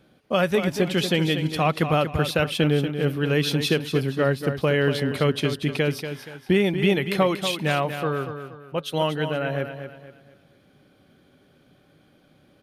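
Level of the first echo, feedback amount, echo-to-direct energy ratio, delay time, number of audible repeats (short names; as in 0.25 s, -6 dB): -9.0 dB, 35%, -8.5 dB, 0.237 s, 3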